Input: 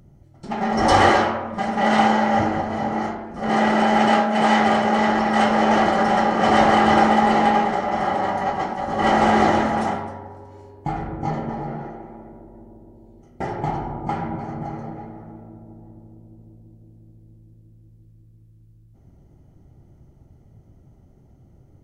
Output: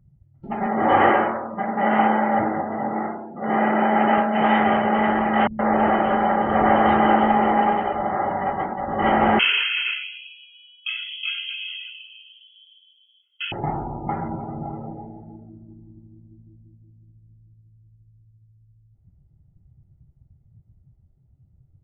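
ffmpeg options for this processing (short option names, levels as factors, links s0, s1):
-filter_complex "[0:a]asettb=1/sr,asplit=3[s0][s1][s2];[s0]atrim=end=0.664[s3];[s1]atrim=start=0.66:end=4.18,asetpts=PTS-STARTPTS,afade=t=in:d=0.004:c=qsin,afade=t=out:st=3.516:d=0.004:c=qsin,highpass=160,lowpass=2600[s4];[s2]atrim=start=4.176[s5];[s3][s4]acrossfade=d=0.004:c1=hsin:c2=qsin[s6];[s6][s5]acrossfade=d=0.004:c1=qsin:c2=hsin,asettb=1/sr,asplit=3[s7][s8][s9];[s7]atrim=end=5.474[s10];[s8]atrim=start=5.47:end=8.31,asetpts=PTS-STARTPTS,afade=t=in:d=0.004:c=qsin,afade=t=out:st=2.836:d=0.004:c=qsin,acrossover=split=180|2500[s11][s12][s13];[s12]adelay=120[s14];[s13]adelay=320[s15];[s11][s14][s15]amix=inputs=3:normalize=0,atrim=end_sample=125244[s16];[s9]atrim=start=8.306[s17];[s10][s16]acrossfade=d=0.004:c1=hsin:c2=qsin[s18];[s18][s17]acrossfade=d=0.004:c1=qsin:c2=hsin,asettb=1/sr,asplit=3[s19][s20][s21];[s19]atrim=end=9.394[s22];[s20]atrim=start=9.39:end=13.52,asetpts=PTS-STARTPTS,afade=t=in:d=0.004:c=qsin,afade=t=out:st=4.126:d=0.004:c=qsin,lowpass=f=2900:t=q:w=0.5098,lowpass=f=2900:t=q:w=0.6013,lowpass=f=2900:t=q:w=0.9,lowpass=f=2900:t=q:w=2.563,afreqshift=-3400[s23];[s21]atrim=start=13.516[s24];[s22][s23]acrossfade=d=0.004:c1=hsin:c2=qsin[s25];[s25][s24]acrossfade=d=0.004:c1=qsin:c2=hsin,lowpass=f=3100:w=0.5412,lowpass=f=3100:w=1.3066,afftdn=nr=20:nf=-37,volume=0.891"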